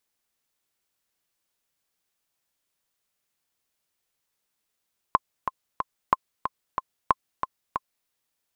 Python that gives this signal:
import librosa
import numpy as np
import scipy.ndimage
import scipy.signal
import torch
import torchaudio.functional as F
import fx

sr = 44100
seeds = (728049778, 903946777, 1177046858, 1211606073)

y = fx.click_track(sr, bpm=184, beats=3, bars=3, hz=1050.0, accent_db=8.0, level_db=-4.5)